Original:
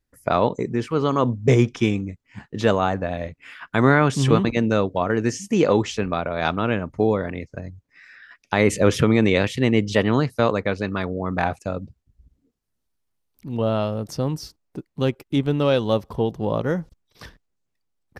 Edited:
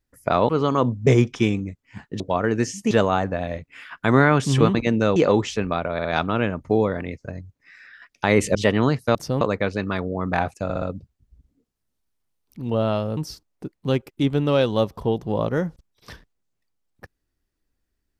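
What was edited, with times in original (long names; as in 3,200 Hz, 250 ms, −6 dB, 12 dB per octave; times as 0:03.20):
0:00.49–0:00.90: remove
0:04.86–0:05.57: move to 0:02.61
0:06.34: stutter 0.06 s, 3 plays
0:08.84–0:09.86: remove
0:11.69: stutter 0.06 s, 4 plays
0:14.04–0:14.30: move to 0:10.46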